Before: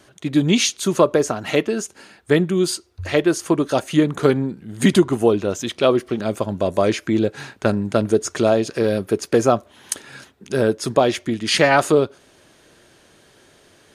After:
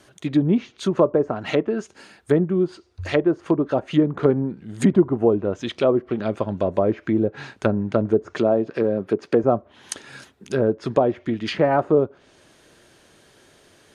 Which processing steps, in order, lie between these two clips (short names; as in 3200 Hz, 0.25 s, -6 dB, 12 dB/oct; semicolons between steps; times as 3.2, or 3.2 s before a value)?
treble ducked by the level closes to 900 Hz, closed at -14.5 dBFS; 8.33–9.44 HPF 130 Hz; gain -1.5 dB